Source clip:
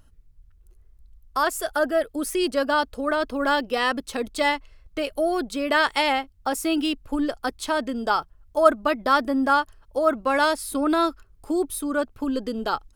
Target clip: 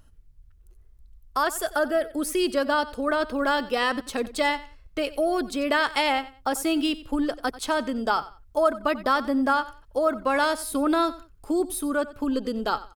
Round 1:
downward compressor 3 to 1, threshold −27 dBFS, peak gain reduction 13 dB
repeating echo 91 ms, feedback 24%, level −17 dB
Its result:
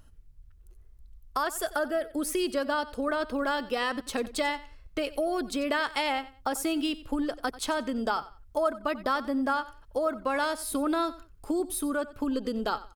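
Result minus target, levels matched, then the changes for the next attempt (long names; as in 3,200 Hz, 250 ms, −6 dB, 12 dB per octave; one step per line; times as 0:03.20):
downward compressor: peak gain reduction +5.5 dB
change: downward compressor 3 to 1, threshold −18.5 dBFS, peak gain reduction 7 dB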